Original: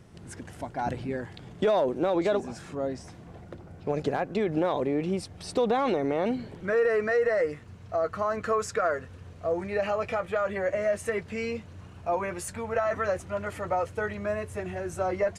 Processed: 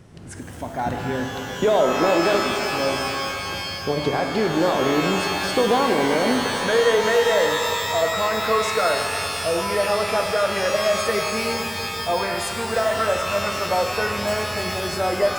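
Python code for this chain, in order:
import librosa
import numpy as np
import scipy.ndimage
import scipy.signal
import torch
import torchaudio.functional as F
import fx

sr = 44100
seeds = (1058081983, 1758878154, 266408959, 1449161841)

y = fx.sample_hold(x, sr, seeds[0], rate_hz=8500.0, jitter_pct=0, at=(14.27, 14.81))
y = fx.rev_shimmer(y, sr, seeds[1], rt60_s=3.1, semitones=12, shimmer_db=-2, drr_db=4.0)
y = y * 10.0 ** (4.5 / 20.0)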